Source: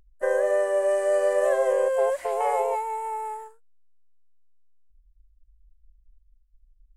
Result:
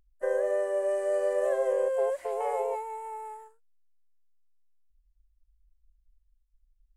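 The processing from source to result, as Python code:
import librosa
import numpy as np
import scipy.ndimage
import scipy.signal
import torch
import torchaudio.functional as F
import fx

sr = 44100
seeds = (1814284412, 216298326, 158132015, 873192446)

y = fx.dynamic_eq(x, sr, hz=440.0, q=1.7, threshold_db=-36.0, ratio=4.0, max_db=6)
y = F.gain(torch.from_numpy(y), -8.5).numpy()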